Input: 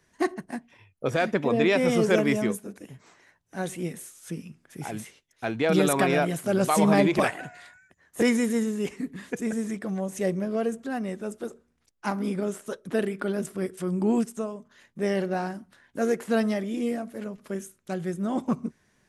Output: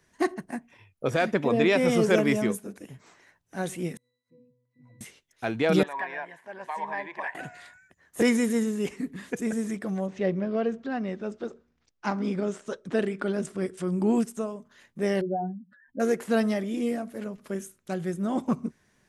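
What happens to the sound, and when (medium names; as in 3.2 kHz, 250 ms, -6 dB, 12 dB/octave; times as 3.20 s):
0.51–0.72 s: time-frequency box 2.8–5.7 kHz -6 dB
3.97–5.01 s: pitch-class resonator B, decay 0.69 s
5.83–7.35 s: two resonant band-passes 1.3 kHz, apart 0.83 oct
10.06–13.90 s: low-pass 4 kHz -> 9.9 kHz 24 dB/octave
15.21–16.00 s: spectral contrast enhancement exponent 3.3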